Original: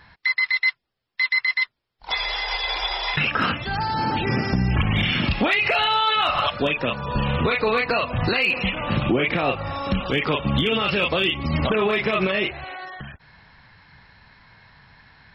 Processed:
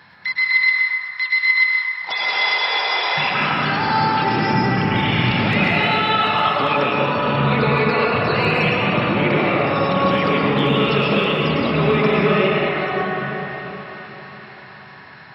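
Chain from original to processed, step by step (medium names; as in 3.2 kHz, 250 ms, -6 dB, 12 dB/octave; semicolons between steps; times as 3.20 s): high-pass 120 Hz 24 dB/octave; peak limiter -19 dBFS, peak gain reduction 10 dB; thinning echo 383 ms, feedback 71%, level -14.5 dB; reverberation RT60 4.2 s, pre-delay 98 ms, DRR -5 dB; trim +3.5 dB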